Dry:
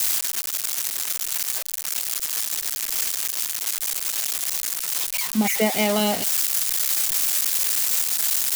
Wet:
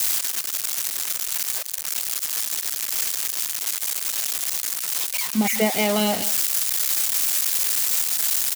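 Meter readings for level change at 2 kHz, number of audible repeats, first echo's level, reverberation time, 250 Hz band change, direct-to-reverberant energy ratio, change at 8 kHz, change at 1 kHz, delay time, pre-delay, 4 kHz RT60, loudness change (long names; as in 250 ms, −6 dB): 0.0 dB, 1, −16.5 dB, no reverb audible, 0.0 dB, no reverb audible, 0.0 dB, 0.0 dB, 178 ms, no reverb audible, no reverb audible, 0.0 dB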